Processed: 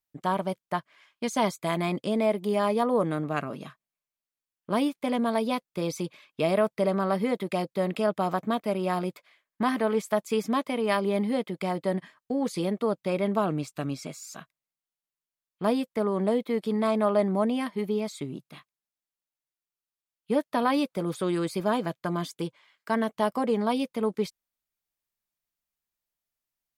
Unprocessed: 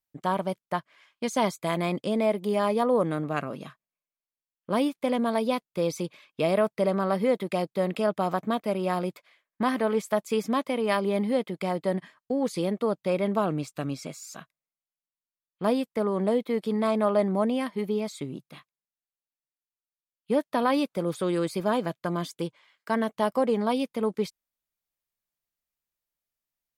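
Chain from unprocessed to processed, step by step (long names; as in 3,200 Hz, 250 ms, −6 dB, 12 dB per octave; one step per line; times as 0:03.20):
notch filter 520 Hz, Q 12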